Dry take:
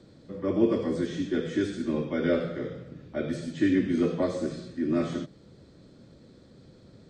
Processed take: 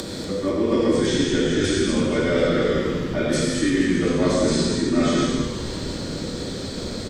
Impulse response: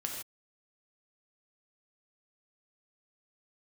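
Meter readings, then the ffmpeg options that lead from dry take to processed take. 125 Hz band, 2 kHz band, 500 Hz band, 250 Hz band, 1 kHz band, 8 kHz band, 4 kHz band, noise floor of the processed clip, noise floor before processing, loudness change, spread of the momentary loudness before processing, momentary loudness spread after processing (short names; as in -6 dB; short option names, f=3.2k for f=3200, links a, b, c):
+10.0 dB, +11.0 dB, +8.5 dB, +6.5 dB, +11.5 dB, n/a, +17.5 dB, -31 dBFS, -54 dBFS, +7.0 dB, 12 LU, 9 LU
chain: -filter_complex "[0:a]asplit=2[a][b];[b]acompressor=mode=upward:threshold=-29dB:ratio=2.5,volume=-2.5dB[c];[a][c]amix=inputs=2:normalize=0,equalizer=f=120:t=o:w=1.3:g=-7,areverse,acompressor=threshold=-31dB:ratio=5,areverse,highshelf=f=3.8k:g=10,asplit=8[d][e][f][g][h][i][j][k];[e]adelay=241,afreqshift=-110,volume=-10dB[l];[f]adelay=482,afreqshift=-220,volume=-14.4dB[m];[g]adelay=723,afreqshift=-330,volume=-18.9dB[n];[h]adelay=964,afreqshift=-440,volume=-23.3dB[o];[i]adelay=1205,afreqshift=-550,volume=-27.7dB[p];[j]adelay=1446,afreqshift=-660,volume=-32.2dB[q];[k]adelay=1687,afreqshift=-770,volume=-36.6dB[r];[d][l][m][n][o][p][q][r]amix=inputs=8:normalize=0[s];[1:a]atrim=start_sample=2205,asetrate=30429,aresample=44100[t];[s][t]afir=irnorm=-1:irlink=0,volume=9dB"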